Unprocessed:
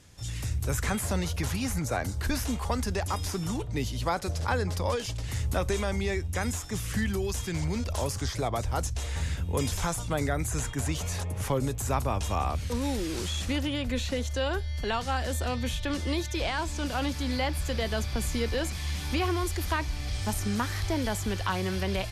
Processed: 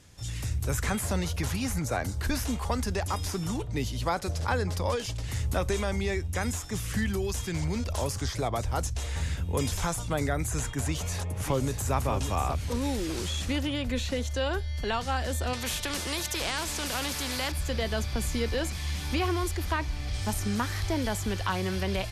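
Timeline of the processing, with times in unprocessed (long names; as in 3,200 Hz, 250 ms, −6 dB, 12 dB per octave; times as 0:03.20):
0:10.83–0:11.94: delay throw 590 ms, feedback 35%, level −8 dB
0:15.53–0:17.52: every bin compressed towards the loudest bin 2 to 1
0:19.51–0:20.14: high-shelf EQ 4,500 Hz −5 dB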